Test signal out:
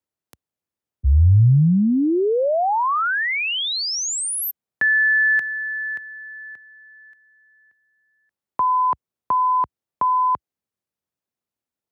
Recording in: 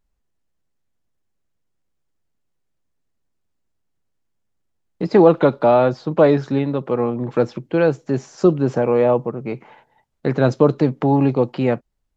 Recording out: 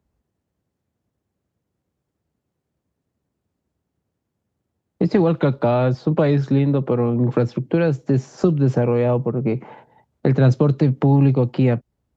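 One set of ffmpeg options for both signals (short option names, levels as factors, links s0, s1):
-filter_complex "[0:a]highpass=f=64:w=0.5412,highpass=f=64:w=1.3066,tiltshelf=f=970:g=6.5,acrossover=split=130|1700[s0][s1][s2];[s1]acompressor=threshold=0.0794:ratio=6[s3];[s0][s3][s2]amix=inputs=3:normalize=0,volume=1.68"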